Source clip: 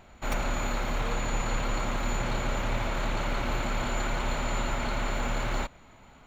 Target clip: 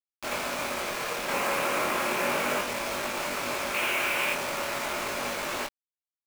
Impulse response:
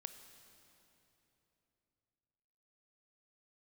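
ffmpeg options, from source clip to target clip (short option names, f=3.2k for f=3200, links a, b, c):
-filter_complex "[0:a]highpass=f=190:w=0.5412,highpass=f=190:w=1.3066,equalizer=f=220:t=q:w=4:g=-4,equalizer=f=380:t=q:w=4:g=4,equalizer=f=580:t=q:w=4:g=6,equalizer=f=1.1k:t=q:w=4:g=5,equalizer=f=1.7k:t=q:w=4:g=4,equalizer=f=2.5k:t=q:w=4:g=8,lowpass=f=3.6k:w=0.5412,lowpass=f=3.6k:w=1.3066,asettb=1/sr,asplit=3[a][b][c];[a]atrim=end=1.284[d];[b]atrim=start=1.28:end=2.61,asetpts=PTS-STARTPTS,afade=t=in:d=0.004:c=qsin,afade=t=out:st=1.326:d=0.004:c=qsin,acontrast=29[e];[c]atrim=start=2.606[f];[d][e]acrossfade=d=0.004:c1=hsin:c2=qsin[g];[g][f]acrossfade=d=0.004:c1=qsin:c2=hsin,asettb=1/sr,asplit=3[h][i][j];[h]atrim=end=3.744[k];[i]atrim=start=3.74:end=4.33,asetpts=PTS-STARTPTS,afade=t=in:d=0.004:c=qsin,afade=t=out:st=0.586:d=0.004:c=qsin,equalizer=f=2.7k:w=1.3:g=11.5[l];[j]atrim=start=4.326[m];[k][l]acrossfade=d=0.004:c1=hsin:c2=qsin[n];[n][m]acrossfade=d=0.004:c1=qsin:c2=hsin,acrusher=bits=4:mix=0:aa=0.000001,flanger=delay=20:depth=3.3:speed=0.34"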